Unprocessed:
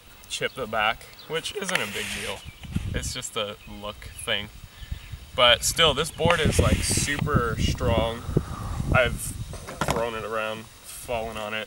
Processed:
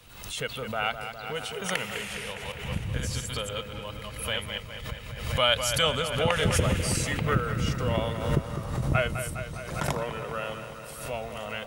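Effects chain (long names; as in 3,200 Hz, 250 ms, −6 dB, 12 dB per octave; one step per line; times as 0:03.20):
0:02.28–0:04.88: delay that plays each chunk backwards 121 ms, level −1 dB
parametric band 130 Hz +5.5 dB 0.46 octaves
bucket-brigade delay 204 ms, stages 4,096, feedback 72%, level −9 dB
background raised ahead of every attack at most 66 dB per second
level −6 dB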